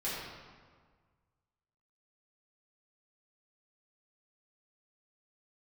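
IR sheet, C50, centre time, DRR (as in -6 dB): -1.5 dB, 99 ms, -10.0 dB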